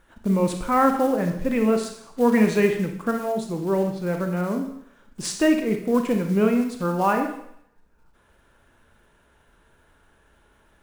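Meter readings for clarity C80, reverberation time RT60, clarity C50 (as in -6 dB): 9.5 dB, 0.70 s, 6.5 dB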